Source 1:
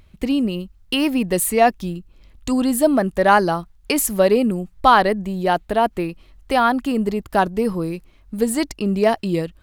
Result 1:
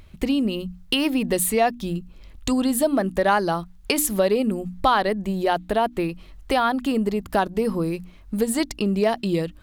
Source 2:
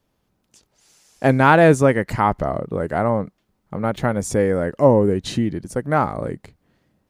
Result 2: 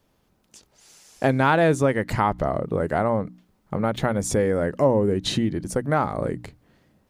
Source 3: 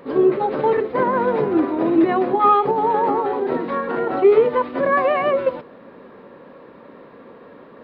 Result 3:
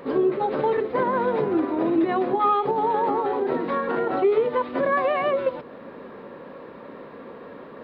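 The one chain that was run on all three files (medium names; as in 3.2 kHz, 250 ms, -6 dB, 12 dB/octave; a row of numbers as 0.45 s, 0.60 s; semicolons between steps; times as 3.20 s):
hum notches 60/120/180/240/300 Hz; dynamic bell 3.6 kHz, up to +5 dB, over -45 dBFS, Q 3.4; compression 2:1, threshold -27 dBFS; normalise loudness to -23 LUFS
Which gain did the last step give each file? +4.0 dB, +4.0 dB, +2.5 dB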